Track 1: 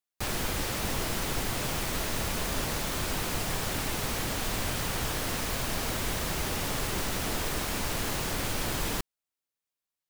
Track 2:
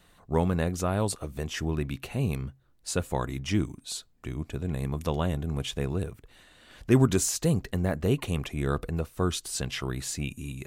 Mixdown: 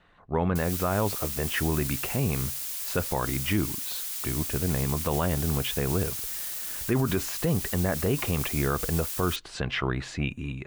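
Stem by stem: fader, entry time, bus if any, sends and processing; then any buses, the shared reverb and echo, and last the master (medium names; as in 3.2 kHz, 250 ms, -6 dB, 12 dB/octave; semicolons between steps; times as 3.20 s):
-3.5 dB, 0.35 s, no send, wavefolder -31 dBFS; differentiator
+1.0 dB, 0.00 s, no send, low-pass 2.1 kHz 12 dB/octave; tilt shelf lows -4 dB, about 710 Hz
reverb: none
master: level rider gain up to 6 dB; peak limiter -15.5 dBFS, peak gain reduction 11 dB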